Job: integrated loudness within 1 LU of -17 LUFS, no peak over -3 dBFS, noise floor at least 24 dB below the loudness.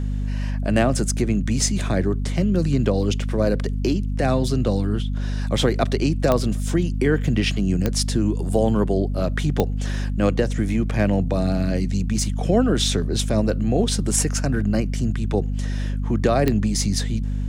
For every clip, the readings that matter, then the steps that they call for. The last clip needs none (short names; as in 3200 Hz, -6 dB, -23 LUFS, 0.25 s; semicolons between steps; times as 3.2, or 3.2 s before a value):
clicks 4; hum 50 Hz; harmonics up to 250 Hz; hum level -21 dBFS; loudness -22.0 LUFS; peak -3.0 dBFS; loudness target -17.0 LUFS
-> de-click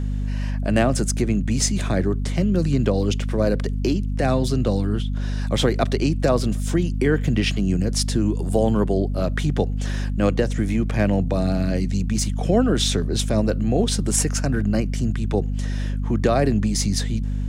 clicks 0; hum 50 Hz; harmonics up to 250 Hz; hum level -21 dBFS
-> notches 50/100/150/200/250 Hz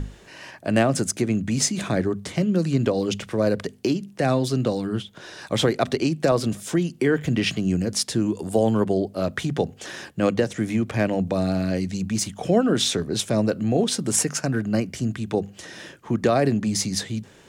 hum none; loudness -23.5 LUFS; peak -5.5 dBFS; loudness target -17.0 LUFS
-> gain +6.5 dB; limiter -3 dBFS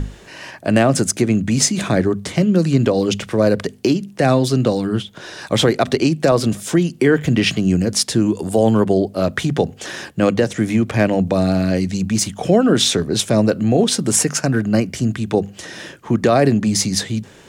loudness -17.5 LUFS; peak -3.0 dBFS; noise floor -43 dBFS